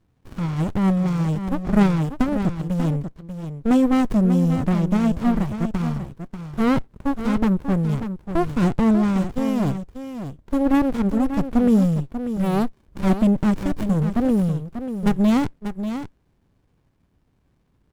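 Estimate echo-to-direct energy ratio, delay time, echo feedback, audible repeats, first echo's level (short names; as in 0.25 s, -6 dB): -9.5 dB, 0.59 s, no steady repeat, 1, -9.5 dB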